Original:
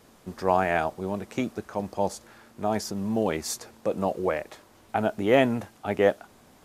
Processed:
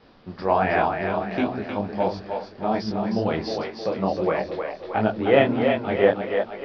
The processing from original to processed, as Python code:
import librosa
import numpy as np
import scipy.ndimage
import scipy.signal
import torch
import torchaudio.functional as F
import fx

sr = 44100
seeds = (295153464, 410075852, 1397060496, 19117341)

y = scipy.signal.sosfilt(scipy.signal.butter(12, 5100.0, 'lowpass', fs=sr, output='sos'), x)
y = fx.echo_split(y, sr, split_hz=320.0, low_ms=117, high_ms=312, feedback_pct=52, wet_db=-5.0)
y = fx.detune_double(y, sr, cents=48)
y = y * librosa.db_to_amplitude(6.0)